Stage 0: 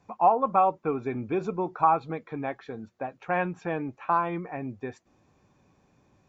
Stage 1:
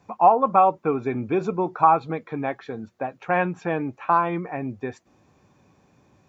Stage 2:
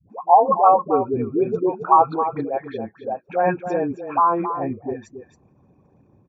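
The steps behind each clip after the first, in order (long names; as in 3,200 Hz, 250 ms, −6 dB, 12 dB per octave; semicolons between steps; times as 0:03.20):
high-pass filter 60 Hz; level +5 dB
spectral envelope exaggerated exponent 2; all-pass dispersion highs, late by 100 ms, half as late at 420 Hz; on a send: single-tap delay 272 ms −10 dB; on the sum: level +2.5 dB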